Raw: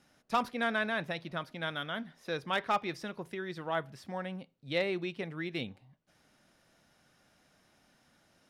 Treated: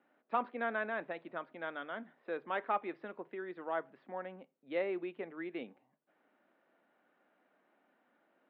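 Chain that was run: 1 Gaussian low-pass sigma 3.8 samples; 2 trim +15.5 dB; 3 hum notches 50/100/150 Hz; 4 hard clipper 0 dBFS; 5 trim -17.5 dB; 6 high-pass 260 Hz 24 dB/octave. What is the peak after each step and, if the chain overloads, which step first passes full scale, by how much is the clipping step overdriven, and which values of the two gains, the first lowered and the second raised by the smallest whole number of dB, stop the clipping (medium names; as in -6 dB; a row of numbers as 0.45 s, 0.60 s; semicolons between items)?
-21.0 dBFS, -5.5 dBFS, -5.5 dBFS, -5.5 dBFS, -23.0 dBFS, -20.5 dBFS; nothing clips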